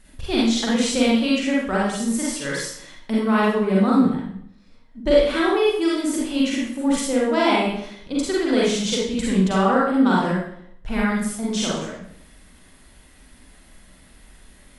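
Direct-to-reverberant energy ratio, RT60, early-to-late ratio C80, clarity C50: −6.0 dB, 0.65 s, 3.5 dB, −1.5 dB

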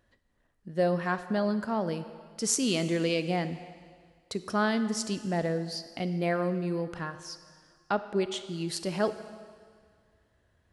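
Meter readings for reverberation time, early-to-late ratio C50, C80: 1.9 s, 12.0 dB, 13.0 dB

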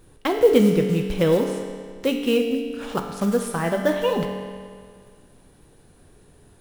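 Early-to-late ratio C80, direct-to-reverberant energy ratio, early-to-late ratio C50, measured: 6.5 dB, 3.0 dB, 5.0 dB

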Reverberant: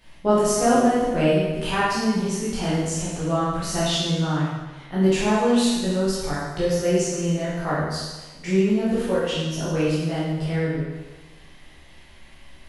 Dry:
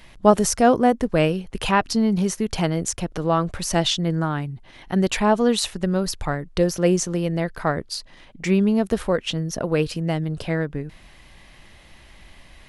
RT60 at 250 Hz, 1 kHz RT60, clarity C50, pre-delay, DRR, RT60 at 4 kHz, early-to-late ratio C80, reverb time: 1.2 s, 1.2 s, −2.0 dB, 13 ms, −10.0 dB, 1.2 s, 1.0 dB, 1.2 s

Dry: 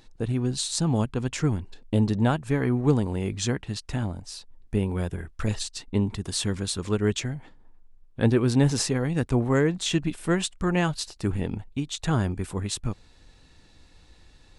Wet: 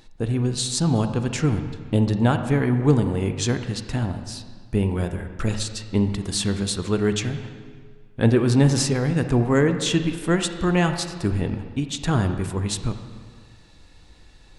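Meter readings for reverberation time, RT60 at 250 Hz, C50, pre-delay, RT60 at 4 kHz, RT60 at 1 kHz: 1.8 s, 1.7 s, 8.5 dB, 32 ms, 1.4 s, 1.8 s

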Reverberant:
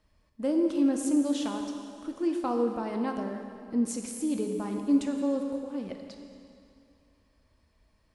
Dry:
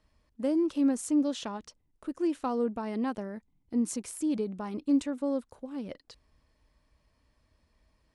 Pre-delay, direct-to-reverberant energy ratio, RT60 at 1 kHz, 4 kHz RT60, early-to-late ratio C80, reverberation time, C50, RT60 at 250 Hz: 4 ms, 3.0 dB, 2.5 s, 2.3 s, 5.5 dB, 2.5 s, 4.5 dB, 2.5 s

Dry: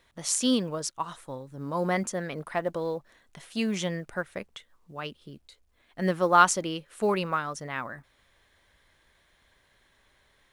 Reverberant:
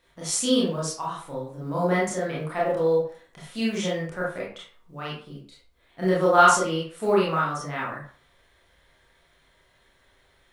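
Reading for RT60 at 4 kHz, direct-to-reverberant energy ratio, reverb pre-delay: 0.30 s, −6.0 dB, 24 ms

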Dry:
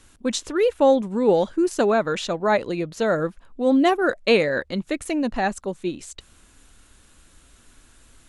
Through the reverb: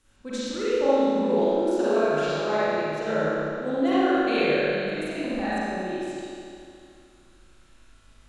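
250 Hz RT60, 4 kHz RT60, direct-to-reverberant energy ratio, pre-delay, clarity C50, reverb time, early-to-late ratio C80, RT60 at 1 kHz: 2.5 s, 2.3 s, −12.0 dB, 38 ms, −9.5 dB, 2.5 s, −5.0 dB, 2.5 s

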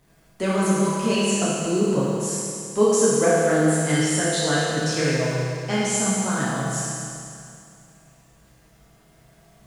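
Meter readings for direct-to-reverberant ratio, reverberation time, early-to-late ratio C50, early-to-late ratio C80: −9.0 dB, 2.4 s, −3.5 dB, −1.5 dB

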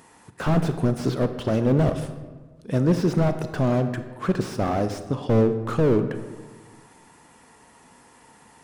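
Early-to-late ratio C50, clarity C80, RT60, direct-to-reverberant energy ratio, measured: 10.0 dB, 11.5 dB, 1.4 s, 9.0 dB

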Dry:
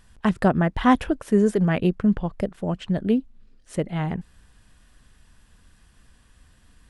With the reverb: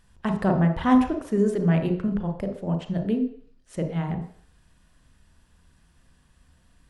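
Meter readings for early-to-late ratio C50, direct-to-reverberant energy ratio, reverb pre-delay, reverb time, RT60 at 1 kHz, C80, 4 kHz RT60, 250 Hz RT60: 8.0 dB, 4.0 dB, 33 ms, 0.55 s, 0.55 s, 11.5 dB, 0.60 s, 0.50 s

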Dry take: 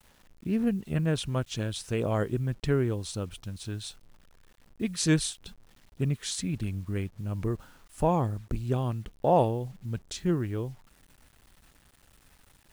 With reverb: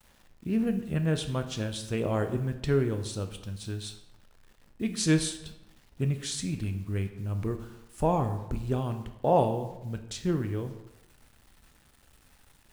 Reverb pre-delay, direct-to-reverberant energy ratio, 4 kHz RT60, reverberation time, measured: 11 ms, 7.0 dB, 0.65 s, 0.95 s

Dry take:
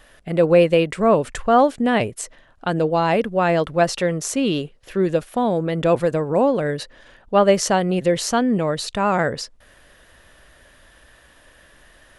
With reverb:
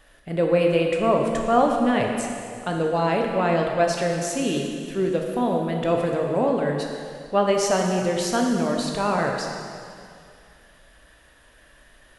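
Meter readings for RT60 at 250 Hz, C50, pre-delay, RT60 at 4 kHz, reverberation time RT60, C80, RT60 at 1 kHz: 2.3 s, 2.5 dB, 6 ms, 2.2 s, 2.3 s, 3.5 dB, 2.3 s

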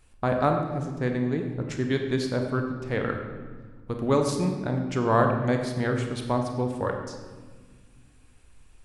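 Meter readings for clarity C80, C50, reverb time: 7.0 dB, 5.0 dB, 1.5 s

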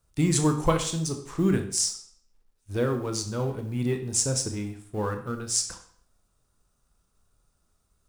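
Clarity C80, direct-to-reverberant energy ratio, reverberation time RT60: 13.0 dB, 5.5 dB, 0.55 s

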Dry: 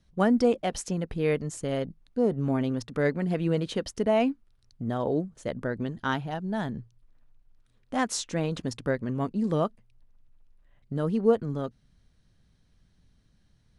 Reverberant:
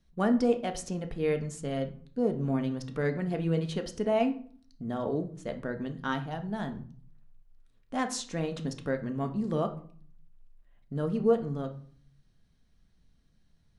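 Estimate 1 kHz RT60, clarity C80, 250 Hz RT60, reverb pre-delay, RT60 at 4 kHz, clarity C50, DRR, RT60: 0.45 s, 17.0 dB, 0.75 s, 3 ms, 0.35 s, 13.0 dB, 6.0 dB, 0.50 s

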